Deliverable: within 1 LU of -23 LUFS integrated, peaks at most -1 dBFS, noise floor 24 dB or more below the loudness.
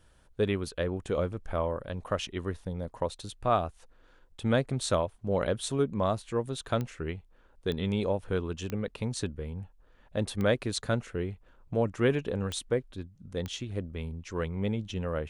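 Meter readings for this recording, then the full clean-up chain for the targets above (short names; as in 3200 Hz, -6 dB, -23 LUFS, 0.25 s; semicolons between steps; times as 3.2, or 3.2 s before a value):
clicks 6; loudness -32.0 LUFS; peak -13.0 dBFS; loudness target -23.0 LUFS
-> de-click; gain +9 dB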